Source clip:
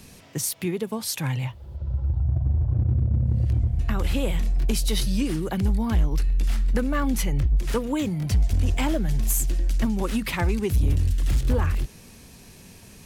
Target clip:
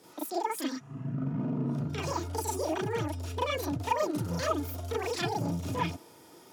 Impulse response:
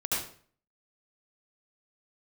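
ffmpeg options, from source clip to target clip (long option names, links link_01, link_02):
-filter_complex "[0:a]highpass=120,lowpass=5100[link_01];[1:a]atrim=start_sample=2205,atrim=end_sample=3528[link_02];[link_01][link_02]afir=irnorm=-1:irlink=0,asetrate=88200,aresample=44100,volume=-7.5dB"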